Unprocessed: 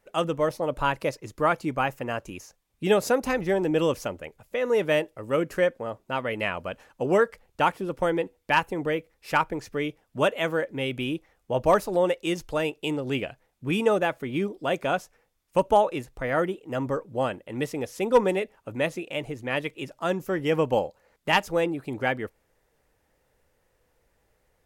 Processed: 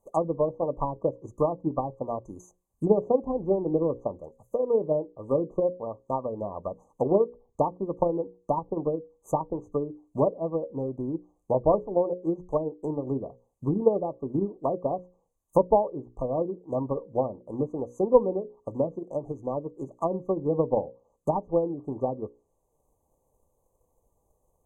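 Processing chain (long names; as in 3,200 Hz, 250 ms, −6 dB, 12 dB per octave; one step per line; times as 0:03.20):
treble cut that deepens with the level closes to 700 Hz, closed at −22.5 dBFS
mains-hum notches 60/120/180/240/300/360/420/480/540 Hz
transient designer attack +7 dB, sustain −2 dB
linear-phase brick-wall band-stop 1,200–6,000 Hz
level −2 dB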